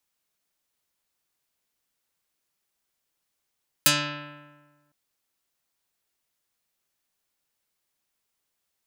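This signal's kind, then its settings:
Karplus-Strong string D3, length 1.06 s, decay 1.42 s, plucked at 0.38, dark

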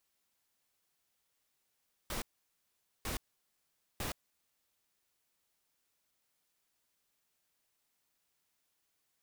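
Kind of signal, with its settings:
noise bursts pink, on 0.12 s, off 0.83 s, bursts 3, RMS −38 dBFS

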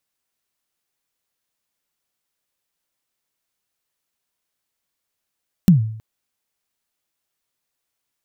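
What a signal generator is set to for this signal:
synth kick length 0.32 s, from 200 Hz, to 110 Hz, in 124 ms, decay 0.63 s, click on, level −4.5 dB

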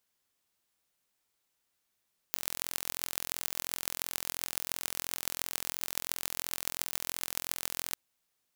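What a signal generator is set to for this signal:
impulse train 42.9 per second, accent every 6, −3 dBFS 5.61 s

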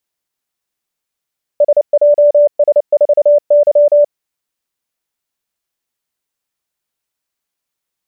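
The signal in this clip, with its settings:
Morse code "SJS4Y" 29 words per minute 586 Hz −4.5 dBFS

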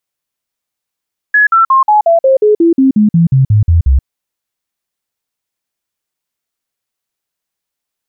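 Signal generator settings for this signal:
stepped sweep 1,690 Hz down, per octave 3, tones 15, 0.13 s, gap 0.05 s −4.5 dBFS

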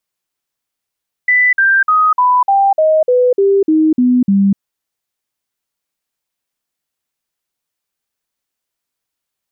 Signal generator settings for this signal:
stepped sweep 1,990 Hz down, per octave 3, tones 11, 0.25 s, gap 0.05 s −7.5 dBFS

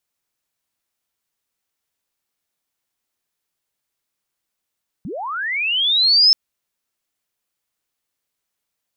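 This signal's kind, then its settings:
glide linear 140 Hz → 5,300 Hz −26.5 dBFS → −8 dBFS 1.28 s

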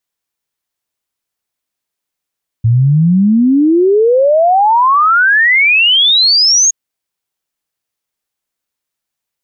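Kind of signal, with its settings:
exponential sine sweep 110 Hz → 6,700 Hz 4.07 s −6 dBFS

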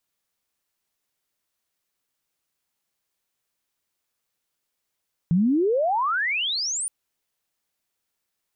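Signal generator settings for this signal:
glide logarithmic 160 Hz → 9,700 Hz −16 dBFS → −25 dBFS 1.57 s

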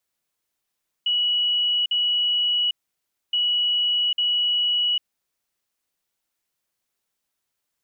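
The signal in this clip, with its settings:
beeps in groups sine 2,930 Hz, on 0.80 s, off 0.05 s, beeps 2, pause 0.62 s, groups 2, −18.5 dBFS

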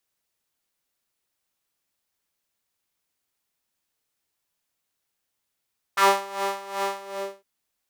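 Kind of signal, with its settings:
subtractive patch with tremolo G4, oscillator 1 triangle, oscillator 2 saw, detune 22 cents, oscillator 2 level −7.5 dB, sub −3 dB, filter highpass, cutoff 510 Hz, Q 2.9, filter envelope 1.5 octaves, filter decay 0.11 s, attack 10 ms, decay 0.32 s, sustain −11 dB, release 0.49 s, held 0.97 s, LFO 2.6 Hz, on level 15 dB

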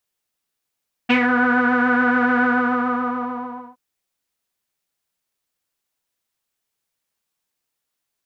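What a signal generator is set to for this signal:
subtractive patch with pulse-width modulation B3, interval +19 semitones, detune 16 cents, sub −28.5 dB, filter lowpass, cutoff 980 Hz, Q 5.4, filter envelope 1.5 octaves, filter decay 0.21 s, filter sustain 40%, attack 15 ms, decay 0.09 s, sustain −4.5 dB, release 1.34 s, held 1.33 s, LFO 7 Hz, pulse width 46%, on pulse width 18%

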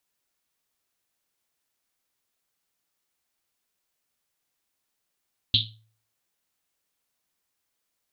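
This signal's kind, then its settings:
drum after Risset, pitch 110 Hz, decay 0.52 s, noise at 3,600 Hz, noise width 1,100 Hz, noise 70%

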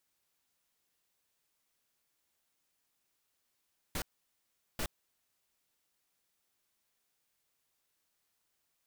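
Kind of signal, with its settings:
noise bursts pink, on 0.07 s, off 0.77 s, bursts 2, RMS −35.5 dBFS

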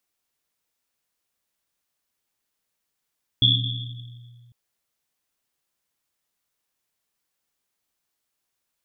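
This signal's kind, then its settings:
drum after Risset, pitch 120 Hz, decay 2.25 s, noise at 3,400 Hz, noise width 270 Hz, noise 50%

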